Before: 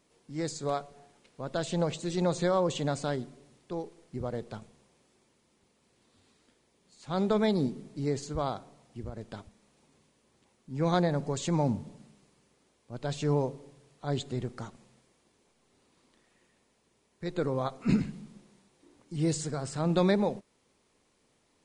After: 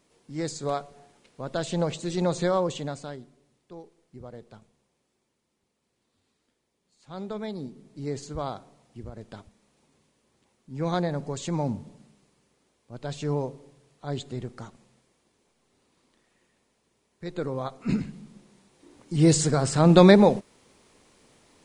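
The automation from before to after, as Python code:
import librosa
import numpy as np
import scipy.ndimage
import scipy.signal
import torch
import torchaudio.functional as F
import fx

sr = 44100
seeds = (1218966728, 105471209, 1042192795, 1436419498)

y = fx.gain(x, sr, db=fx.line((2.56, 2.5), (3.19, -8.0), (7.68, -8.0), (8.17, -0.5), (18.07, -0.5), (19.4, 11.0)))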